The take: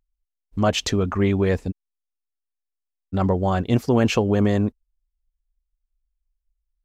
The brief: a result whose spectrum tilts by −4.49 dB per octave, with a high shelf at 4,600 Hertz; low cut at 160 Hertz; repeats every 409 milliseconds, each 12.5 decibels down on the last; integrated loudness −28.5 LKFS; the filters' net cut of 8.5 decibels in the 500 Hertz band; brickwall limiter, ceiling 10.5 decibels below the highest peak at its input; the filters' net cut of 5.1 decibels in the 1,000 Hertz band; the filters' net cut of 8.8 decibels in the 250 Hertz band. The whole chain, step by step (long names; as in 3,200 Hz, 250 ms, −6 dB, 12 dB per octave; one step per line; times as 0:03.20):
high-pass filter 160 Hz
parametric band 250 Hz −8.5 dB
parametric band 500 Hz −7 dB
parametric band 1,000 Hz −4 dB
high-shelf EQ 4,600 Hz +8.5 dB
brickwall limiter −18.5 dBFS
repeating echo 409 ms, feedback 24%, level −12.5 dB
level +2 dB